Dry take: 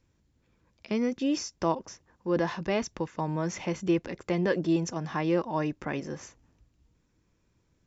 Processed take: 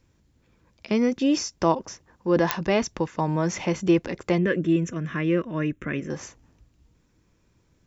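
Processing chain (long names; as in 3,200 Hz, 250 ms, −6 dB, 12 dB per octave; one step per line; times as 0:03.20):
0:04.38–0:06.10: phaser with its sweep stopped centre 2,000 Hz, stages 4
digital clicks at 0:02.51, −9 dBFS
level +6 dB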